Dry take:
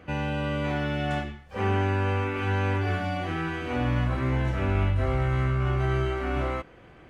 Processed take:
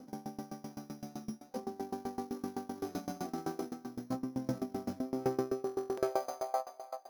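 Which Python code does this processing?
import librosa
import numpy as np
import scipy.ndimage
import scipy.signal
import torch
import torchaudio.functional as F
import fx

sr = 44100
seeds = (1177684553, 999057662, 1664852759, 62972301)

y = scipy.ndimage.median_filter(x, 25, mode='constant')
y = fx.filter_sweep_highpass(y, sr, from_hz=230.0, to_hz=690.0, start_s=4.88, end_s=6.42, q=6.4)
y = np.repeat(scipy.signal.resample_poly(y, 1, 8), 8)[:len(y)]
y = fx.peak_eq(y, sr, hz=780.0, db=5.0, octaves=0.21)
y = fx.over_compress(y, sr, threshold_db=-28.0, ratio=-1.0)
y = fx.low_shelf(y, sr, hz=70.0, db=-5.5)
y = fx.comb_fb(y, sr, f0_hz=130.0, decay_s=0.16, harmonics='all', damping=0.0, mix_pct=80)
y = fx.echo_thinned(y, sr, ms=346, feedback_pct=25, hz=270.0, wet_db=-9.5)
y = fx.buffer_glitch(y, sr, at_s=(5.65,), block=1024, repeats=13)
y = fx.tremolo_decay(y, sr, direction='decaying', hz=7.8, depth_db=24)
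y = y * 10.0 ** (1.0 / 20.0)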